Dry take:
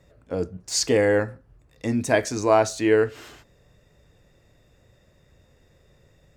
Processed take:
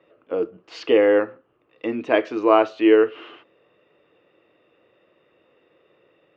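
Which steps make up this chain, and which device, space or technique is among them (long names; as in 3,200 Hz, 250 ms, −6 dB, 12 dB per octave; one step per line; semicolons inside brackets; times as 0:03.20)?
phone earpiece (loudspeaker in its box 330–3,100 Hz, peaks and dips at 330 Hz +9 dB, 480 Hz +5 dB, 1,200 Hz +8 dB, 1,700 Hz −3 dB, 2,900 Hz +10 dB)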